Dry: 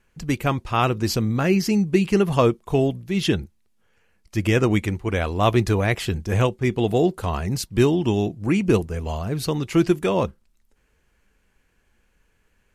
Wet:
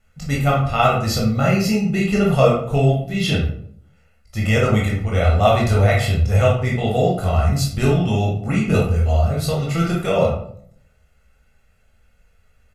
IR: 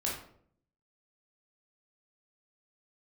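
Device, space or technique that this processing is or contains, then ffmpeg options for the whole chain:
microphone above a desk: -filter_complex "[0:a]aecho=1:1:1.5:0.8[link_01];[1:a]atrim=start_sample=2205[link_02];[link_01][link_02]afir=irnorm=-1:irlink=0,volume=-2.5dB"

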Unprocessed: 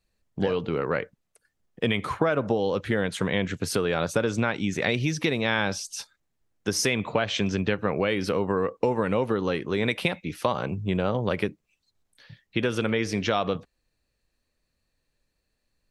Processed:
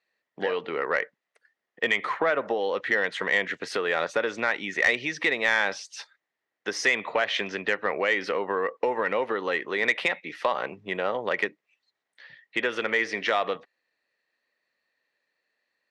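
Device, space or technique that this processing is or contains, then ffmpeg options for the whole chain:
intercom: -af "highpass=490,lowpass=3900,equalizer=frequency=1900:width_type=o:width=0.23:gain=11.5,asoftclip=type=tanh:threshold=-12.5dB,volume=2dB"

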